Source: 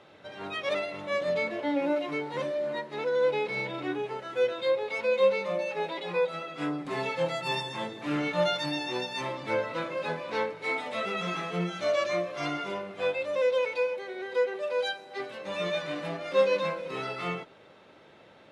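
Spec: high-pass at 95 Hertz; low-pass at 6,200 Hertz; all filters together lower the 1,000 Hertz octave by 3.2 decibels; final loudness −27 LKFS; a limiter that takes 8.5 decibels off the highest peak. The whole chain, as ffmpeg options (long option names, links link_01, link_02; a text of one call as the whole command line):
ffmpeg -i in.wav -af "highpass=95,lowpass=6200,equalizer=frequency=1000:width_type=o:gain=-4,volume=5.5dB,alimiter=limit=-17dB:level=0:latency=1" out.wav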